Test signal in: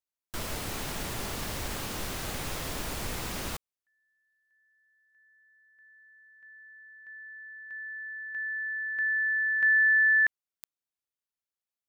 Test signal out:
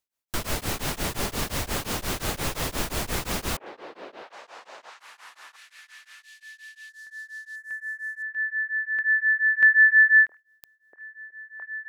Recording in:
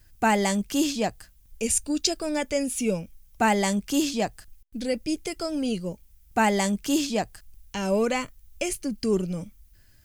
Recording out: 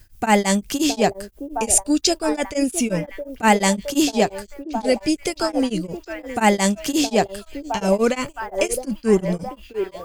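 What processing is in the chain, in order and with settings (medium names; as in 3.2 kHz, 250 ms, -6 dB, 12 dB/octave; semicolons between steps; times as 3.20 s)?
repeats whose band climbs or falls 665 ms, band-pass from 460 Hz, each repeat 0.7 oct, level -6 dB; tremolo of two beating tones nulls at 5.7 Hz; trim +8.5 dB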